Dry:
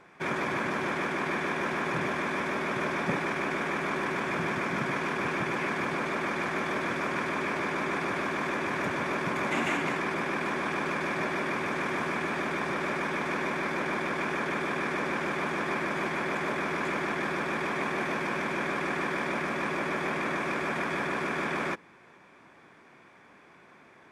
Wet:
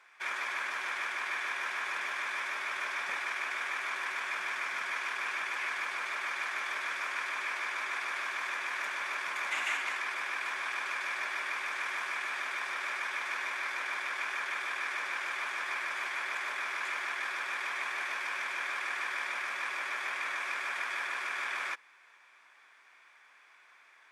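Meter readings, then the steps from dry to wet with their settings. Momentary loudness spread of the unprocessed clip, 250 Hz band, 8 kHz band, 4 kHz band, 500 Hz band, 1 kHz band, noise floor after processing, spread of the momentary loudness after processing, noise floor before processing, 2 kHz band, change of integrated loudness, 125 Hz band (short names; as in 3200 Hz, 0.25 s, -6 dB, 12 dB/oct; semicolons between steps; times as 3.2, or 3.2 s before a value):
1 LU, -27.0 dB, 0.0 dB, 0.0 dB, -18.0 dB, -6.0 dB, -61 dBFS, 1 LU, -56 dBFS, -1.5 dB, -4.0 dB, under -35 dB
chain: HPF 1400 Hz 12 dB/oct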